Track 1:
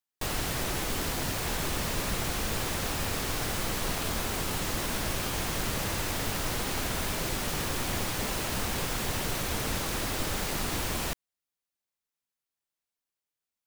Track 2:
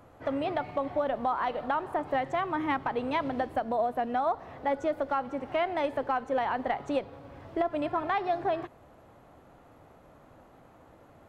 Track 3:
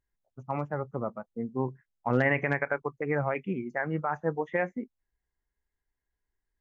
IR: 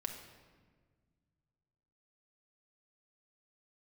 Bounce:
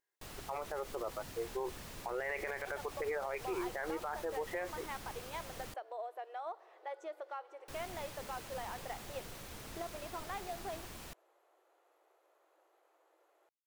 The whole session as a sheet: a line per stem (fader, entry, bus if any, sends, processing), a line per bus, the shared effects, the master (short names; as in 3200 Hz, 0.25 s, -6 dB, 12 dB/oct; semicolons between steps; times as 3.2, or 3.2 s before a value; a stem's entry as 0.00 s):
-17.5 dB, 0.00 s, muted 5.74–7.68, no bus, no send, dry
-15.0 dB, 2.20 s, bus A, no send, high shelf 3400 Hz +7.5 dB
+1.5 dB, 0.00 s, bus A, no send, dry
bus A: 0.0 dB, brick-wall FIR high-pass 320 Hz; limiter -20.5 dBFS, peak gain reduction 7.5 dB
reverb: off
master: limiter -29 dBFS, peak gain reduction 9.5 dB